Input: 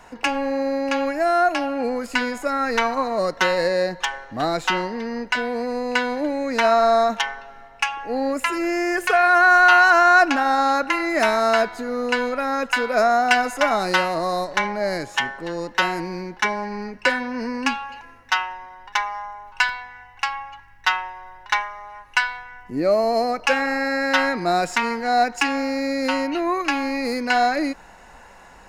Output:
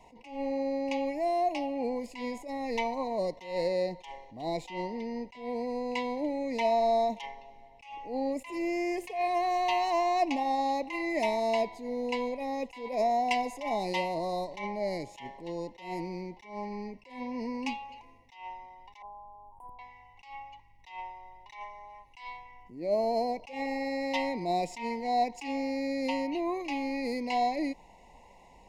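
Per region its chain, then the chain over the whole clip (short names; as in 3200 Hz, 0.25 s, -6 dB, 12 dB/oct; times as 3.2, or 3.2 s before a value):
19.02–19.79 Chebyshev band-stop 1300–9000 Hz, order 5 + dynamic EQ 990 Hz, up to -8 dB, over -40 dBFS, Q 1.3
whole clip: elliptic band-stop 1000–2000 Hz, stop band 40 dB; high shelf 4400 Hz -7 dB; attack slew limiter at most 120 dB/s; gain -7.5 dB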